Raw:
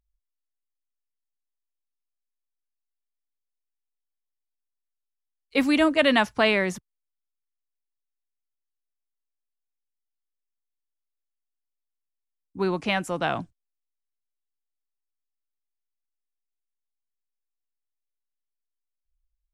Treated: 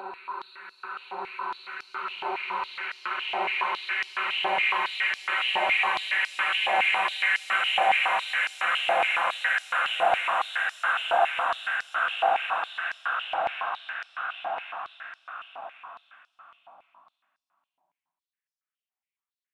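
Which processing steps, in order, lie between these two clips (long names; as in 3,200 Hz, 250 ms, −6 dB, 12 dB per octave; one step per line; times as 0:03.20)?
high shelf with overshoot 3,400 Hz −6 dB, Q 1.5
extreme stretch with random phases 12×, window 1.00 s, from 0:12.37
high-pass on a step sequencer 7.2 Hz 770–5,100 Hz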